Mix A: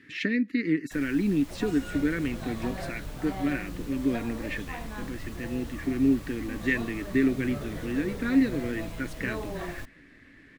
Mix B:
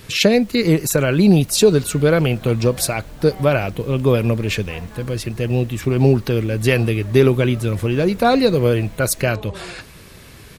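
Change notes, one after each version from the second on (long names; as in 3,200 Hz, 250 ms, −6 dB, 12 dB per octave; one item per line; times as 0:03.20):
speech: remove pair of resonant band-passes 720 Hz, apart 2.7 octaves
first sound: entry −0.60 s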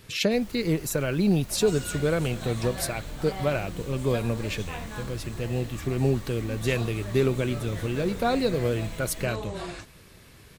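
speech −10.0 dB
second sound: remove low-pass filter 1,800 Hz 6 dB per octave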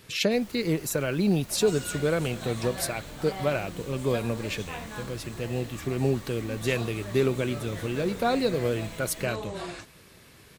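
master: add low-shelf EQ 78 Hz −11.5 dB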